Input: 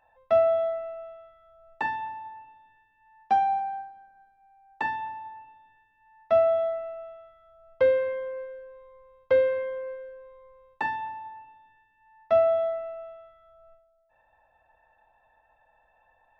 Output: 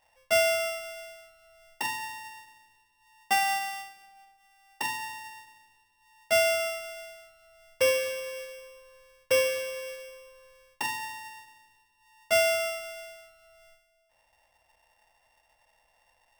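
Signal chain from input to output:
samples sorted by size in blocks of 16 samples
spring reverb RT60 1.7 s, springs 47 ms, chirp 25 ms, DRR 19 dB
level −3 dB

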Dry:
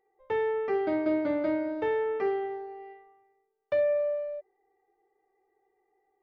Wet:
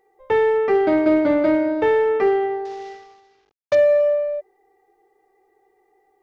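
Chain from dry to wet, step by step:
0:02.65–0:03.75: variable-slope delta modulation 32 kbit/s
in parallel at −10.5 dB: hard clipping −27 dBFS, distortion −12 dB
on the sum: level +9 dB

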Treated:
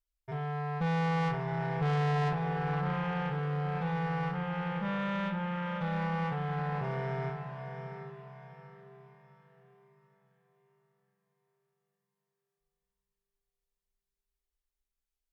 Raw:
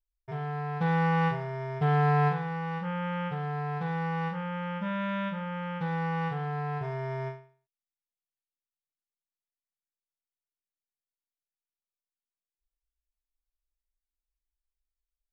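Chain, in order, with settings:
feedback delay with all-pass diffusion 713 ms, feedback 40%, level −8 dB
tube saturation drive 26 dB, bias 0.25

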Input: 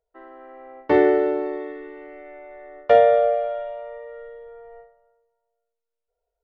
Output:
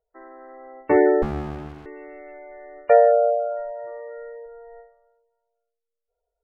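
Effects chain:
0:03.79–0:04.46: mid-hump overdrive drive 13 dB, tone 1,200 Hz, clips at −26.5 dBFS
gate on every frequency bin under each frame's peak −25 dB strong
0:01.22–0:01.86: windowed peak hold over 65 samples

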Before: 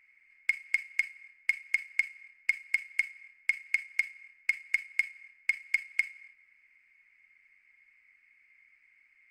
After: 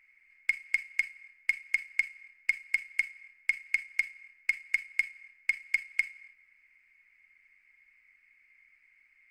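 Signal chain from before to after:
low-shelf EQ 67 Hz +7 dB
mains-hum notches 60/120/180/240/300/360/420/480/540/600 Hz

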